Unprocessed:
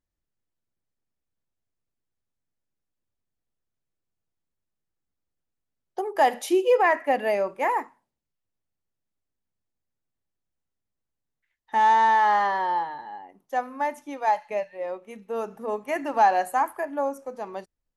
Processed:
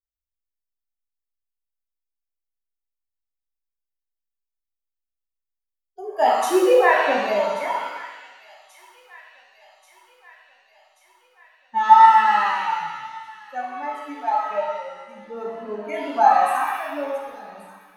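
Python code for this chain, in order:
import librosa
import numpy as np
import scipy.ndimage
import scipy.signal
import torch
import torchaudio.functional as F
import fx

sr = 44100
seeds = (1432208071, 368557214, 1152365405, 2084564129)

y = fx.bin_expand(x, sr, power=2.0)
y = fx.vibrato(y, sr, rate_hz=3.6, depth_cents=6.0)
y = fx.echo_wet_highpass(y, sr, ms=1134, feedback_pct=62, hz=1500.0, wet_db=-18)
y = fx.rev_shimmer(y, sr, seeds[0], rt60_s=1.1, semitones=7, shimmer_db=-8, drr_db=-3.0)
y = y * librosa.db_to_amplitude(2.0)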